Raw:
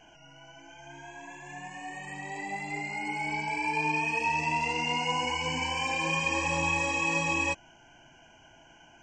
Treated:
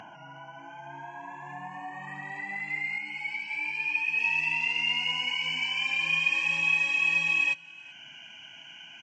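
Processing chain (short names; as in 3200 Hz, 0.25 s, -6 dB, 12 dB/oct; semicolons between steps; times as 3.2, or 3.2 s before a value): band-pass sweep 1000 Hz -> 2700 Hz, 1.88–3.14; in parallel at 0 dB: upward compressor, threshold -35 dBFS; on the sum: HPF 100 Hz 24 dB/oct; resonant low shelf 290 Hz +13 dB, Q 1.5; on a send: echo 0.382 s -23 dB; 2.98–4.19 on the sum: ensemble effect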